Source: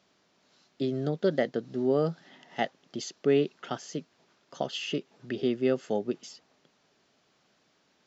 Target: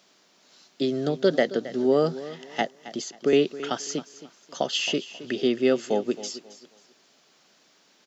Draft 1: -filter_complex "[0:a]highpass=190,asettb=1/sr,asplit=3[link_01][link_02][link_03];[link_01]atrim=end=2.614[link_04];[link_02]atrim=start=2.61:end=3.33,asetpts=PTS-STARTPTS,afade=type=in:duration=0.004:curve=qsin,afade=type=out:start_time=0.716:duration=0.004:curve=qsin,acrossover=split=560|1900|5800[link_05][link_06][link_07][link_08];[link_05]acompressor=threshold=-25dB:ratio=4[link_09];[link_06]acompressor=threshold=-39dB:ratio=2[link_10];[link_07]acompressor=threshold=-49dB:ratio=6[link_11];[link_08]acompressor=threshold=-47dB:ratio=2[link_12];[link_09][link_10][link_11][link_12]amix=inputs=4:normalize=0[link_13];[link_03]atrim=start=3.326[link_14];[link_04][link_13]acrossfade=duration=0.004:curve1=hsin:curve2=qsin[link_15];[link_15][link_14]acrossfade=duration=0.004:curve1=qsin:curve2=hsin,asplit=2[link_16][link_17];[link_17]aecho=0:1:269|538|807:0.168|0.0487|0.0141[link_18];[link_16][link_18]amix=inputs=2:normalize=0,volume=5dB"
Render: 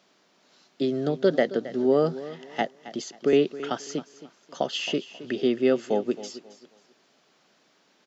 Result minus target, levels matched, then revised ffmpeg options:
8,000 Hz band −6.0 dB
-filter_complex "[0:a]highpass=190,highshelf=frequency=3700:gain=9,asettb=1/sr,asplit=3[link_01][link_02][link_03];[link_01]atrim=end=2.614[link_04];[link_02]atrim=start=2.61:end=3.33,asetpts=PTS-STARTPTS,afade=type=in:duration=0.004:curve=qsin,afade=type=out:start_time=0.716:duration=0.004:curve=qsin,acrossover=split=560|1900|5800[link_05][link_06][link_07][link_08];[link_05]acompressor=threshold=-25dB:ratio=4[link_09];[link_06]acompressor=threshold=-39dB:ratio=2[link_10];[link_07]acompressor=threshold=-49dB:ratio=6[link_11];[link_08]acompressor=threshold=-47dB:ratio=2[link_12];[link_09][link_10][link_11][link_12]amix=inputs=4:normalize=0[link_13];[link_03]atrim=start=3.326[link_14];[link_04][link_13]acrossfade=duration=0.004:curve1=hsin:curve2=qsin[link_15];[link_15][link_14]acrossfade=duration=0.004:curve1=qsin:curve2=hsin,asplit=2[link_16][link_17];[link_17]aecho=0:1:269|538|807:0.168|0.0487|0.0141[link_18];[link_16][link_18]amix=inputs=2:normalize=0,volume=5dB"

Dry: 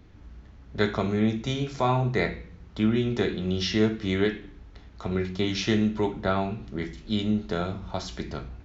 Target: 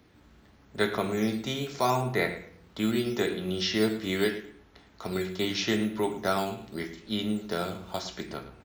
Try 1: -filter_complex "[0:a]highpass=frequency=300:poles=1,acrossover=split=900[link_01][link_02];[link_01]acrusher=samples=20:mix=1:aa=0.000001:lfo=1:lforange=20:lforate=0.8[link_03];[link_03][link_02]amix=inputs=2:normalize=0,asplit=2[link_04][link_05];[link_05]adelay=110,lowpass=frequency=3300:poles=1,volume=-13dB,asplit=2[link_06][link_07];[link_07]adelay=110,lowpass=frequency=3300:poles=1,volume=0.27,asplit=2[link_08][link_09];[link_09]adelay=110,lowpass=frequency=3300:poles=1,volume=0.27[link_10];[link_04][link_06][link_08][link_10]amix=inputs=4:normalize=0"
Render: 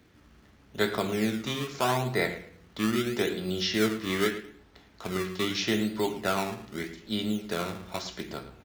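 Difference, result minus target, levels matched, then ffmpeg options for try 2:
sample-and-hold swept by an LFO: distortion +9 dB
-filter_complex "[0:a]highpass=frequency=300:poles=1,acrossover=split=900[link_01][link_02];[link_01]acrusher=samples=8:mix=1:aa=0.000001:lfo=1:lforange=8:lforate=0.8[link_03];[link_03][link_02]amix=inputs=2:normalize=0,asplit=2[link_04][link_05];[link_05]adelay=110,lowpass=frequency=3300:poles=1,volume=-13dB,asplit=2[link_06][link_07];[link_07]adelay=110,lowpass=frequency=3300:poles=1,volume=0.27,asplit=2[link_08][link_09];[link_09]adelay=110,lowpass=frequency=3300:poles=1,volume=0.27[link_10];[link_04][link_06][link_08][link_10]amix=inputs=4:normalize=0"

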